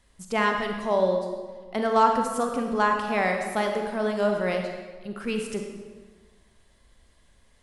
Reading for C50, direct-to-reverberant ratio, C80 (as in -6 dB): 4.5 dB, 3.0 dB, 6.0 dB